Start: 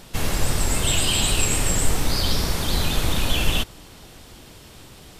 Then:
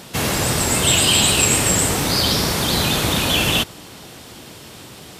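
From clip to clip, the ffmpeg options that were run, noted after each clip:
-af "highpass=110,volume=2.24"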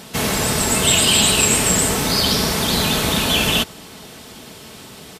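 -af "aecho=1:1:4.6:0.37"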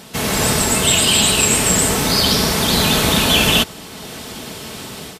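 -af "dynaudnorm=f=230:g=3:m=2.66,volume=0.891"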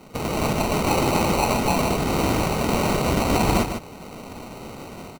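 -filter_complex "[0:a]acrusher=samples=26:mix=1:aa=0.000001,asplit=2[s0][s1];[s1]aecho=0:1:150:0.398[s2];[s0][s2]amix=inputs=2:normalize=0,volume=0.473"

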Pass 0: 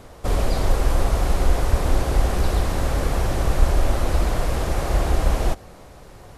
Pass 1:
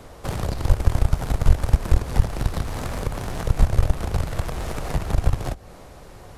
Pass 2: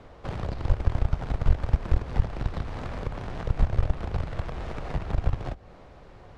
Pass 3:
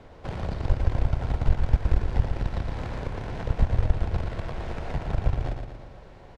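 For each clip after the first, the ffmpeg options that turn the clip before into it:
-filter_complex "[0:a]aeval=exprs='0.75*(cos(1*acos(clip(val(0)/0.75,-1,1)))-cos(1*PI/2))+0.133*(cos(5*acos(clip(val(0)/0.75,-1,1)))-cos(5*PI/2))+0.299*(cos(7*acos(clip(val(0)/0.75,-1,1)))-cos(7*PI/2))':c=same,acrossover=split=130[s0][s1];[s1]acompressor=threshold=0.0316:ratio=6[s2];[s0][s2]amix=inputs=2:normalize=0,volume=1.19"
-af "lowpass=3500,volume=0.531"
-af "bandreject=f=1200:w=11,aecho=1:1:116|232|348|464|580|696|812:0.501|0.266|0.141|0.0746|0.0395|0.021|0.0111"

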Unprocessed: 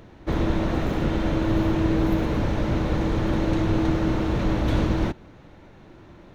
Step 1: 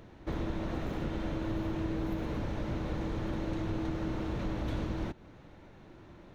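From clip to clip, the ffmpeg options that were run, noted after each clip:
-af "acompressor=threshold=0.0316:ratio=2,volume=0.531"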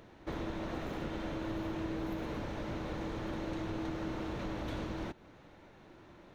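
-af "lowshelf=f=230:g=-8"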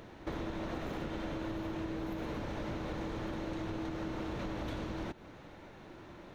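-af "acompressor=threshold=0.01:ratio=6,volume=1.78"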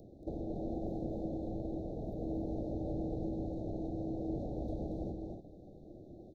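-af "afwtdn=0.00562,asuperstop=centerf=1700:order=20:qfactor=0.59,aecho=1:1:230.3|282.8:0.631|0.398,volume=0.891"

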